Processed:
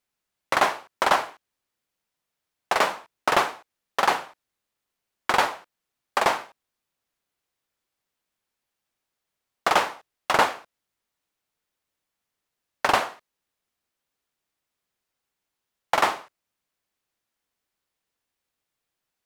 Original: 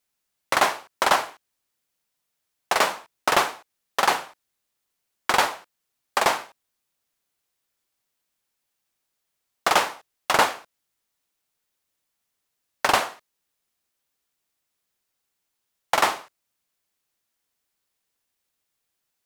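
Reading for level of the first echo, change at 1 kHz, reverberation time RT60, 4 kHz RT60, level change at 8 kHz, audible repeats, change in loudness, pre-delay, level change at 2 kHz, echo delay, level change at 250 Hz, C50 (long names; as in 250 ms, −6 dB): no echo audible, −0.5 dB, no reverb audible, no reverb audible, −5.5 dB, no echo audible, −1.0 dB, no reverb audible, −1.0 dB, no echo audible, 0.0 dB, no reverb audible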